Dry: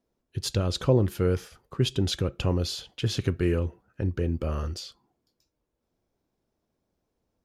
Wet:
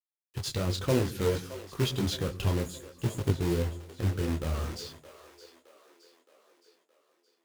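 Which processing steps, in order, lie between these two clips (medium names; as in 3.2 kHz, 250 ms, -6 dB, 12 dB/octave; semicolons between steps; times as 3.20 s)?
spectral selection erased 2.57–3.75 s, 700–6500 Hz; companded quantiser 4-bit; two-band feedback delay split 390 Hz, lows 107 ms, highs 618 ms, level -14 dB; detune thickener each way 21 cents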